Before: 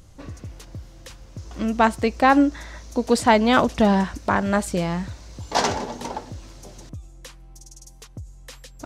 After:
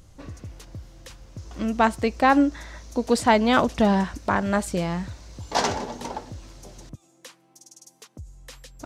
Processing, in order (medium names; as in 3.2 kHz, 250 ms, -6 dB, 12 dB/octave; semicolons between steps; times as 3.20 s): 6.95–8.19 s: high-pass 200 Hz 24 dB/octave; trim -2 dB